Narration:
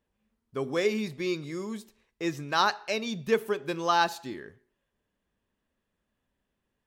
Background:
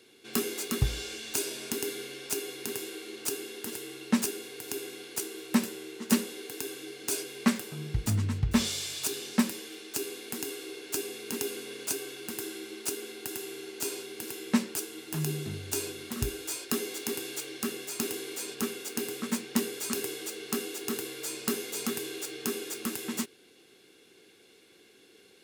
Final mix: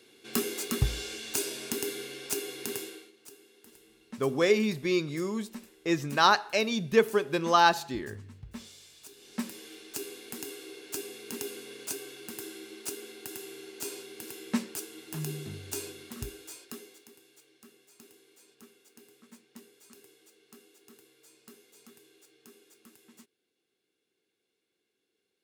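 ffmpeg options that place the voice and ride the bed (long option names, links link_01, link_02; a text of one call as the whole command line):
ffmpeg -i stem1.wav -i stem2.wav -filter_complex "[0:a]adelay=3650,volume=3dB[link_01];[1:a]volume=14.5dB,afade=type=out:start_time=2.77:duration=0.35:silence=0.11885,afade=type=in:start_time=9.16:duration=0.53:silence=0.188365,afade=type=out:start_time=15.72:duration=1.38:silence=0.112202[link_02];[link_01][link_02]amix=inputs=2:normalize=0" out.wav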